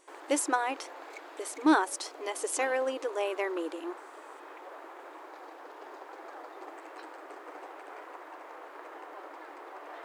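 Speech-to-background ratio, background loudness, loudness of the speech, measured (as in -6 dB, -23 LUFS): 15.5 dB, -46.5 LUFS, -31.0 LUFS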